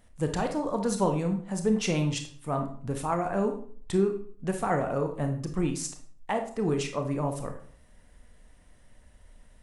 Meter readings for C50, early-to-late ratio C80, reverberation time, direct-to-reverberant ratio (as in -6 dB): 8.5 dB, 13.5 dB, 0.50 s, 4.5 dB